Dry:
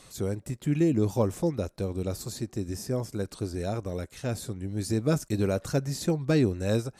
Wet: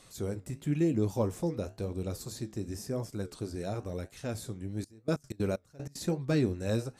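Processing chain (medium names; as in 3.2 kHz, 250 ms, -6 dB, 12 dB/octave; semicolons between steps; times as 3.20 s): flange 0.97 Hz, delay 9.1 ms, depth 8.7 ms, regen -70%; 4.68–6.02 s: trance gate ".x.x.xx.." 189 bpm -24 dB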